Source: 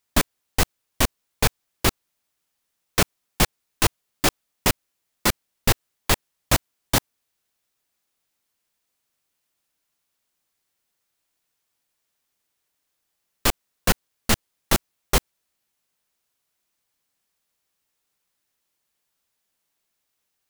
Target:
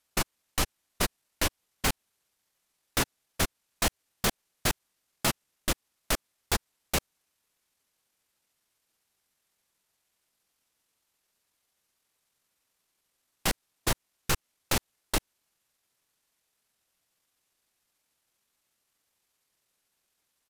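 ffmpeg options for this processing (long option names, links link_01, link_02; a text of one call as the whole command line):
ffmpeg -i in.wav -af "asetrate=28595,aresample=44100,atempo=1.54221,acompressor=threshold=-19dB:ratio=6,aeval=exprs='0.119*(abs(mod(val(0)/0.119+3,4)-2)-1)':channel_layout=same" out.wav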